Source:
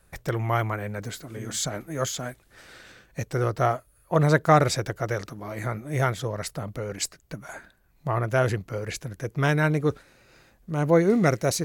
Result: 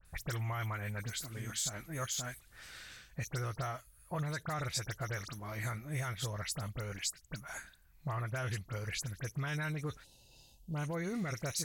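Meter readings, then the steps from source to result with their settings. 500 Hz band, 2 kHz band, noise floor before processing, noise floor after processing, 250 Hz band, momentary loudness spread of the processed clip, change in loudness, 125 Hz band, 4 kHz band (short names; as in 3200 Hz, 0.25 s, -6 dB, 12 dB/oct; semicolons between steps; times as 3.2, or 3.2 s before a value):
-19.0 dB, -10.5 dB, -62 dBFS, -63 dBFS, -15.0 dB, 10 LU, -13.0 dB, -11.0 dB, -6.0 dB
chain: limiter -15 dBFS, peak gain reduction 10 dB; bell 400 Hz -14 dB 2.9 oct; spectral gain 10.03–10.75, 1000–2600 Hz -28 dB; compressor 5:1, threshold -35 dBFS, peak gain reduction 10 dB; dispersion highs, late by 54 ms, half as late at 2900 Hz; gain +1 dB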